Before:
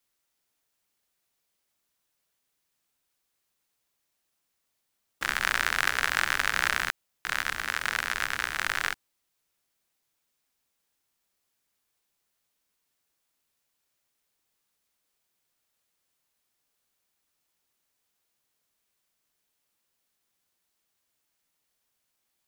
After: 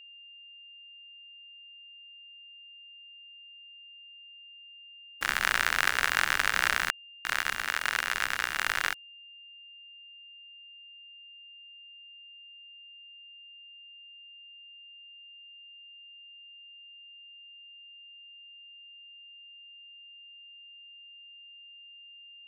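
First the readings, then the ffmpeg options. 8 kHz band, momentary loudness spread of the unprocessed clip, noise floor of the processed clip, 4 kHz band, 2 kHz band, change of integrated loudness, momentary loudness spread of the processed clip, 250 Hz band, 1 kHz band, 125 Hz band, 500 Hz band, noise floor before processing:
0.0 dB, 7 LU, -51 dBFS, +1.0 dB, 0.0 dB, 0.0 dB, 7 LU, -1.5 dB, 0.0 dB, -2.0 dB, -0.5 dB, -79 dBFS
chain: -af "aeval=exprs='val(0)*gte(abs(val(0)),0.00794)':c=same,aeval=exprs='val(0)+0.00398*sin(2*PI*2800*n/s)':c=same"

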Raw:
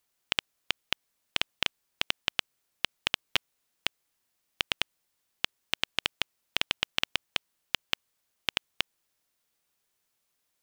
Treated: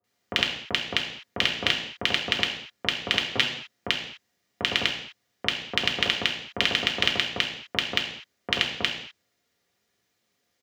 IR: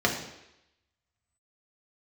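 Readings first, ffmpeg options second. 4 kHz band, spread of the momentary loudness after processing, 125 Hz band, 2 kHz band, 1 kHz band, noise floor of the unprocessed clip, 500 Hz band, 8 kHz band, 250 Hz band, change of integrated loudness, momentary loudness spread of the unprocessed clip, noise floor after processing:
+6.5 dB, 8 LU, +11.5 dB, +7.5 dB, +6.5 dB, -79 dBFS, +11.0 dB, +3.0 dB, +12.5 dB, +6.5 dB, 6 LU, -76 dBFS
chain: -filter_complex "[0:a]acrossover=split=1100[s0][s1];[s1]adelay=40[s2];[s0][s2]amix=inputs=2:normalize=0[s3];[1:a]atrim=start_sample=2205,afade=t=out:st=0.31:d=0.01,atrim=end_sample=14112[s4];[s3][s4]afir=irnorm=-1:irlink=0,volume=0.596"

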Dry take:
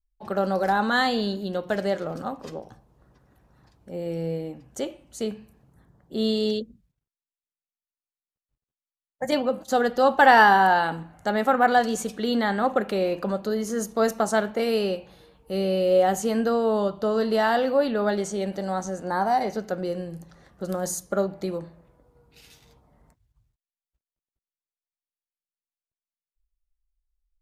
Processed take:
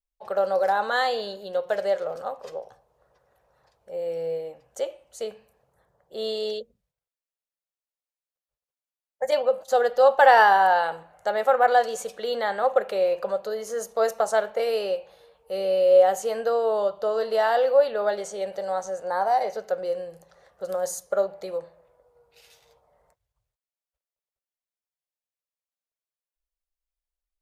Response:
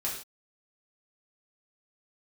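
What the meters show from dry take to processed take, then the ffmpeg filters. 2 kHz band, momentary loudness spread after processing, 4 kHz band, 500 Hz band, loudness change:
-2.5 dB, 16 LU, -3.0 dB, +2.0 dB, 0.0 dB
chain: -af "lowshelf=f=380:t=q:w=3:g=-10.5,volume=0.708"

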